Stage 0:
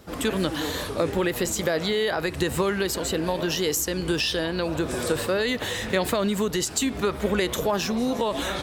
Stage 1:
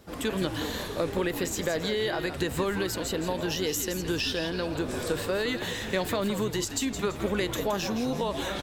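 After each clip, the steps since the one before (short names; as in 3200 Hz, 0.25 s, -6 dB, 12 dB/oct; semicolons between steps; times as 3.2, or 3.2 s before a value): notch 1300 Hz, Q 25; dynamic EQ 9400 Hz, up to -5 dB, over -50 dBFS, Q 3.4; on a send: frequency-shifting echo 0.168 s, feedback 34%, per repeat -80 Hz, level -9 dB; on the sum: gain -4.5 dB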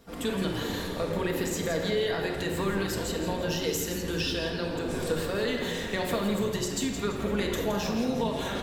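shoebox room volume 1700 m³, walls mixed, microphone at 1.7 m; gain -3.5 dB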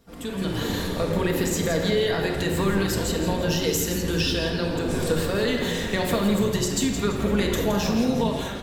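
tone controls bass +4 dB, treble +2 dB; AGC gain up to 9 dB; gain -4.5 dB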